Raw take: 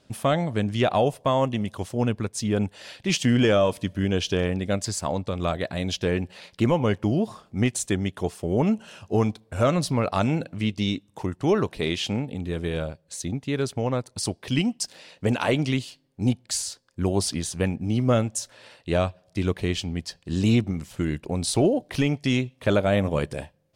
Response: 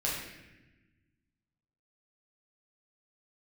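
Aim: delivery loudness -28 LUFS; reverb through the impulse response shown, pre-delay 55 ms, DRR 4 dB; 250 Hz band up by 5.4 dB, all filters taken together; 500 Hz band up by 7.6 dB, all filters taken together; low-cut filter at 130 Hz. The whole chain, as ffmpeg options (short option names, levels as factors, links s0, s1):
-filter_complex "[0:a]highpass=130,equalizer=f=250:t=o:g=5,equalizer=f=500:t=o:g=8,asplit=2[s0][s1];[1:a]atrim=start_sample=2205,adelay=55[s2];[s1][s2]afir=irnorm=-1:irlink=0,volume=0.299[s3];[s0][s3]amix=inputs=2:normalize=0,volume=0.355"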